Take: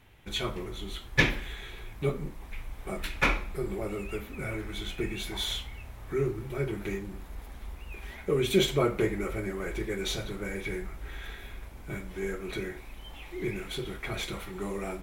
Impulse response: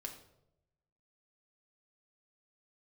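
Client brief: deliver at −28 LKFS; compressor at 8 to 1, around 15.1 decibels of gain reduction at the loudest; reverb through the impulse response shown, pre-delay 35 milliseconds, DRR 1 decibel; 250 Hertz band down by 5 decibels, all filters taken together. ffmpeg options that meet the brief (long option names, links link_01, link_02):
-filter_complex "[0:a]equalizer=frequency=250:width_type=o:gain=-8.5,acompressor=threshold=-33dB:ratio=8,asplit=2[link_01][link_02];[1:a]atrim=start_sample=2205,adelay=35[link_03];[link_02][link_03]afir=irnorm=-1:irlink=0,volume=2dB[link_04];[link_01][link_04]amix=inputs=2:normalize=0,volume=9dB"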